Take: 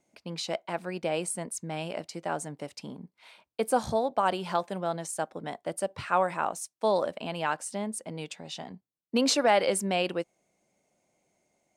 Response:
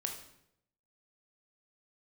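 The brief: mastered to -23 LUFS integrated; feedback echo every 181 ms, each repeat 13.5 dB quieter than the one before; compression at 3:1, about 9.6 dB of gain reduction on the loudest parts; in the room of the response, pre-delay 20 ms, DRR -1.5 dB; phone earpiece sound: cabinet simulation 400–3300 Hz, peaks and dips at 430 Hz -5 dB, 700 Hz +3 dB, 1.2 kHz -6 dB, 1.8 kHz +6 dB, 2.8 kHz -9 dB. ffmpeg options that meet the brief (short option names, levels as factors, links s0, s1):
-filter_complex "[0:a]acompressor=threshold=0.0251:ratio=3,aecho=1:1:181|362:0.211|0.0444,asplit=2[s0][s1];[1:a]atrim=start_sample=2205,adelay=20[s2];[s1][s2]afir=irnorm=-1:irlink=0,volume=1.12[s3];[s0][s3]amix=inputs=2:normalize=0,highpass=400,equalizer=f=430:t=q:w=4:g=-5,equalizer=f=700:t=q:w=4:g=3,equalizer=f=1200:t=q:w=4:g=-6,equalizer=f=1800:t=q:w=4:g=6,equalizer=f=2800:t=q:w=4:g=-9,lowpass=f=3300:w=0.5412,lowpass=f=3300:w=1.3066,volume=3.98"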